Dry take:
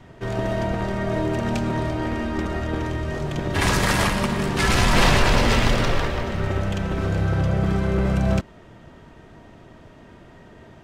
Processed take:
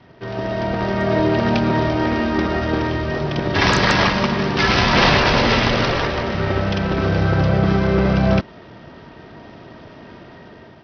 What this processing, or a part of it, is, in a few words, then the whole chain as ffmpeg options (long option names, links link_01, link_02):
Bluetooth headset: -af "highpass=frequency=130:poles=1,dynaudnorm=framelen=300:gausssize=5:maxgain=8dB,aresample=16000,aresample=44100" -ar 44100 -c:a sbc -b:a 64k